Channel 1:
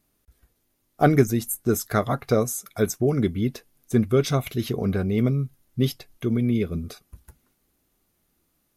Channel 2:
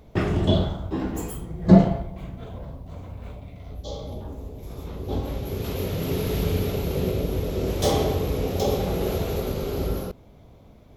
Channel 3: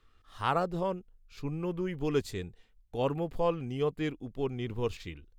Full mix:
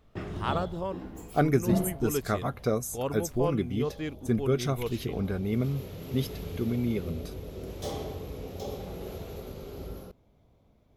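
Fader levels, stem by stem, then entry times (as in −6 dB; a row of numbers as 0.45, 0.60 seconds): −6.5, −13.5, −2.0 decibels; 0.35, 0.00, 0.00 seconds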